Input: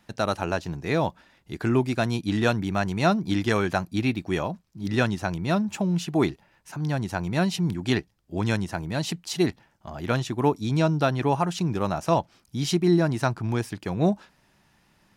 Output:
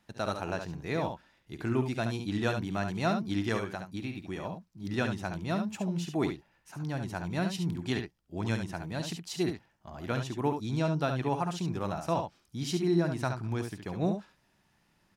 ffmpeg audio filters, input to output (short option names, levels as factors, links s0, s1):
-filter_complex "[0:a]asettb=1/sr,asplit=3[s0][s1][s2];[s0]atrim=end=3.574[s3];[s1]atrim=start=3.57:end=4.45,asetpts=PTS-STARTPTS,afade=t=in:d=0.004:c=qsin,afade=t=out:st=0.876:d=0.004:c=qsin,acompressor=threshold=0.0501:ratio=6[s4];[s2]atrim=start=4.446[s5];[s3][s4]acrossfade=d=0.004:c1=hsin:c2=qsin[s6];[s6][s5]acrossfade=d=0.004:c1=qsin:c2=hsin,aecho=1:1:53|70:0.178|0.447,volume=0.398"